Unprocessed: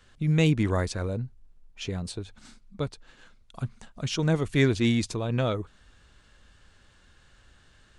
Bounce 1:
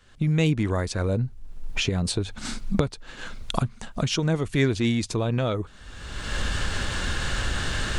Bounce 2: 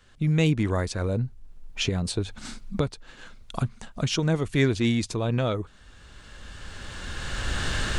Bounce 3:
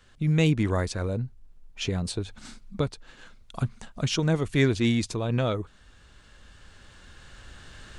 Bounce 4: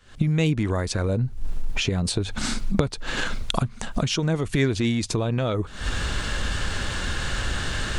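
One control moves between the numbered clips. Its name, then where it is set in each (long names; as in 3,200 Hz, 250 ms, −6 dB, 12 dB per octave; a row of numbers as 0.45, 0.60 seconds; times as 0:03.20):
camcorder AGC, rising by: 34, 14, 5.1, 88 dB per second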